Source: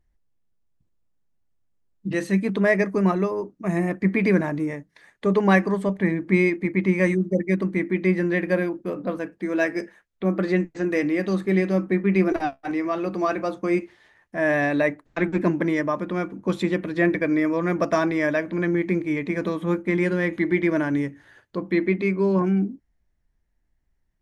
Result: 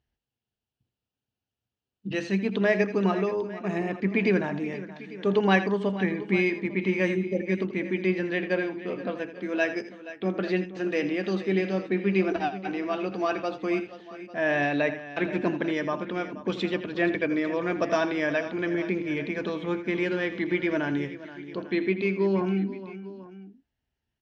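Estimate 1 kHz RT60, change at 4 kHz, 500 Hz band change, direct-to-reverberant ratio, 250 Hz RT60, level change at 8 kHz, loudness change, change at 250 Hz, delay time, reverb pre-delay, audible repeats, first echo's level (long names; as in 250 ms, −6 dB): no reverb audible, +3.5 dB, −3.0 dB, no reverb audible, no reverb audible, can't be measured, −4.0 dB, −5.0 dB, 82 ms, no reverb audible, 3, −12.5 dB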